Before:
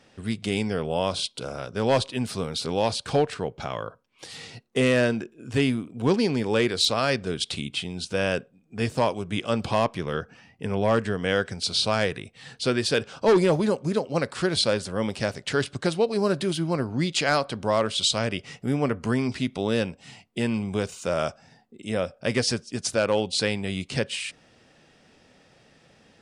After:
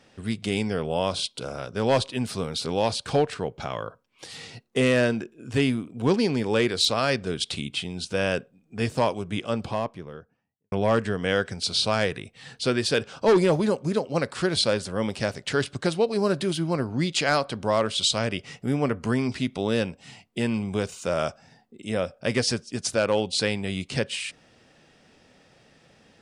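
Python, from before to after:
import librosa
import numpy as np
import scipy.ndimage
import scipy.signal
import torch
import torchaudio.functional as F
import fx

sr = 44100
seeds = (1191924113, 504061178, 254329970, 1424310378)

y = fx.studio_fade_out(x, sr, start_s=9.06, length_s=1.66)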